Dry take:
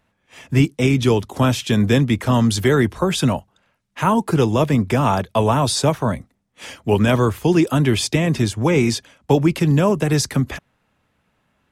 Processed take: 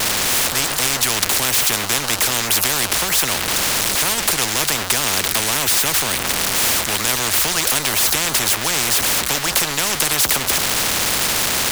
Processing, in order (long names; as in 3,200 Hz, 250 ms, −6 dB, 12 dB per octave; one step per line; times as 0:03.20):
converter with a step at zero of −27 dBFS
every bin compressed towards the loudest bin 10 to 1
level +1.5 dB